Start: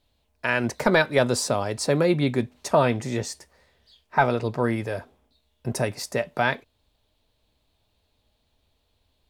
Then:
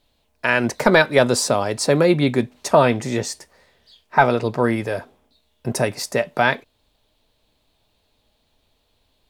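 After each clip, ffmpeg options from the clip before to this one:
-af "equalizer=f=70:t=o:w=1.4:g=-7,volume=5.5dB"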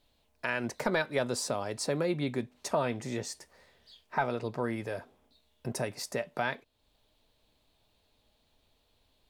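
-af "acompressor=threshold=-39dB:ratio=1.5,volume=-5dB"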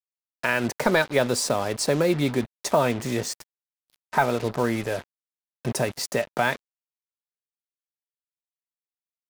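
-af "acrusher=bits=6:mix=0:aa=0.5,volume=8.5dB"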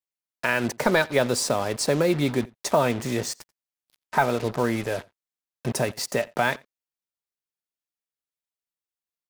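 -filter_complex "[0:a]asplit=2[a][b];[b]adelay=87.46,volume=-25dB,highshelf=f=4k:g=-1.97[c];[a][c]amix=inputs=2:normalize=0"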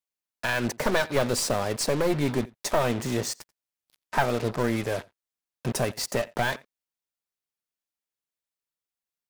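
-af "aeval=exprs='clip(val(0),-1,0.0473)':c=same"

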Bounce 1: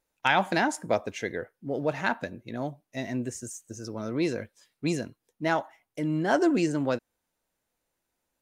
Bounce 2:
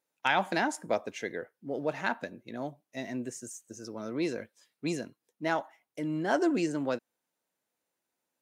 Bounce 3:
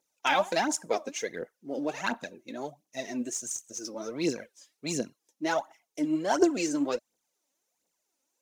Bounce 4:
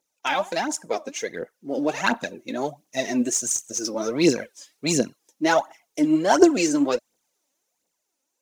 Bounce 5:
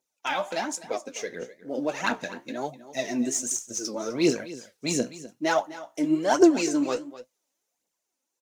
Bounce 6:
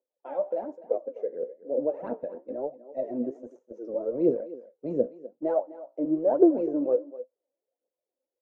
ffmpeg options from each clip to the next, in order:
-af "highpass=170,volume=-3.5dB"
-af "equalizer=f=100:t=o:w=0.67:g=-12,equalizer=f=1.6k:t=o:w=0.67:g=-4,equalizer=f=6.3k:t=o:w=0.67:g=10,aphaser=in_gain=1:out_gain=1:delay=3.9:decay=0.66:speed=1.4:type=triangular"
-af "dynaudnorm=f=470:g=7:m=10dB,volume=1dB"
-af "aecho=1:1:253:0.158,flanger=delay=7.7:depth=9.1:regen=61:speed=1.1:shape=sinusoidal"
-filter_complex "[0:a]acrossover=split=210[a][b];[a]aeval=exprs='val(0)*gte(abs(val(0)),0.00708)':c=same[c];[c][b]amix=inputs=2:normalize=0,lowpass=f=530:t=q:w=5,volume=-6.5dB"

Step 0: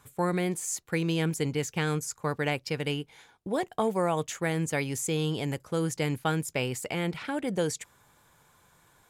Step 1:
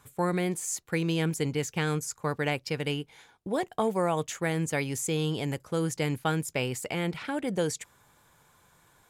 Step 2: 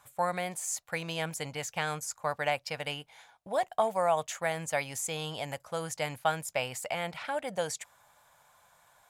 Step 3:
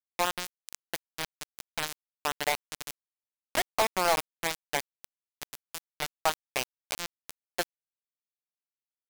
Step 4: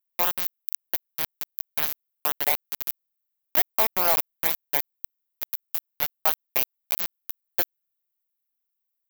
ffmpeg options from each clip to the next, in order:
-af anull
-af "lowshelf=f=490:t=q:w=3:g=-8.5,volume=-1.5dB"
-af "acrusher=bits=3:mix=0:aa=0.000001"
-af "aexciter=amount=7.3:drive=6.5:freq=12k,volume=-1dB"

